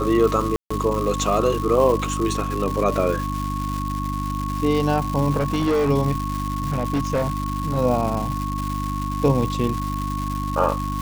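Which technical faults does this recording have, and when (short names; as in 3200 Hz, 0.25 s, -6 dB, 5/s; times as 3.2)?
crackle 380/s -25 dBFS
hum 50 Hz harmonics 6 -27 dBFS
tone 1100 Hz -28 dBFS
0.56–0.7 gap 0.145 s
5.38–5.91 clipped -16.5 dBFS
6.66–7.78 clipped -17 dBFS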